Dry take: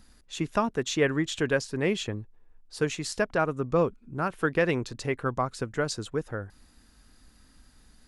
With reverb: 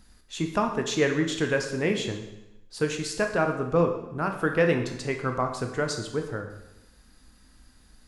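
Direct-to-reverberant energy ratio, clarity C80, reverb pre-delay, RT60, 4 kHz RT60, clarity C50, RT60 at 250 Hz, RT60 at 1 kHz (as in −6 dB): 4.0 dB, 9.5 dB, 7 ms, 0.90 s, 0.85 s, 7.5 dB, 0.90 s, 0.95 s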